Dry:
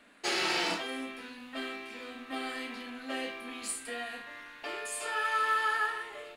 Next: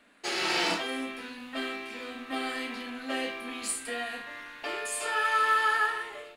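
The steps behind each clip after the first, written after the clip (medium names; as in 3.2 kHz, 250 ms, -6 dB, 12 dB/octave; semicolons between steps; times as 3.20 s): level rider gain up to 6 dB; trim -2 dB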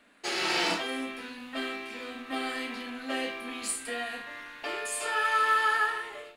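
endings held to a fixed fall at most 150 dB/s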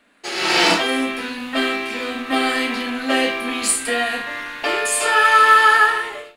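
level rider gain up to 11.5 dB; trim +2.5 dB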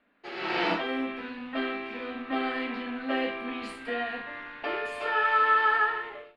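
distance through air 360 m; trim -8.5 dB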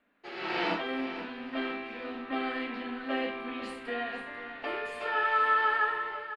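feedback delay 493 ms, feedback 46%, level -12.5 dB; trim -3 dB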